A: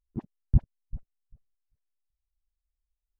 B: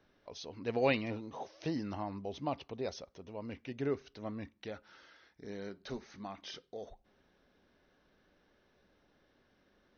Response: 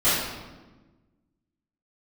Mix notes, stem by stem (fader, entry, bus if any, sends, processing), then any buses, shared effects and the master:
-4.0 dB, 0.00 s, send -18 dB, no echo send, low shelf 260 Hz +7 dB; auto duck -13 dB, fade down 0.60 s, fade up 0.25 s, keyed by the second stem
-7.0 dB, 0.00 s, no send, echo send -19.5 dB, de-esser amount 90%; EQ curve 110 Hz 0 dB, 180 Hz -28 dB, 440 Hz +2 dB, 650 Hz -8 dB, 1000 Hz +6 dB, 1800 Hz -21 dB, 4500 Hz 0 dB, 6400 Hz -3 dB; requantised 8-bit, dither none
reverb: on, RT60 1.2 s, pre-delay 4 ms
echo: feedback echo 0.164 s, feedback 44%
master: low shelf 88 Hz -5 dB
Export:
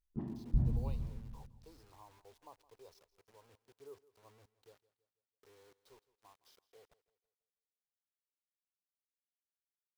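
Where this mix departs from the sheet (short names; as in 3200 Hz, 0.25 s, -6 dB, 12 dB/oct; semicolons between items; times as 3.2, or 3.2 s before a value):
stem A: missing low shelf 260 Hz +7 dB; stem B -7.0 dB -> -17.5 dB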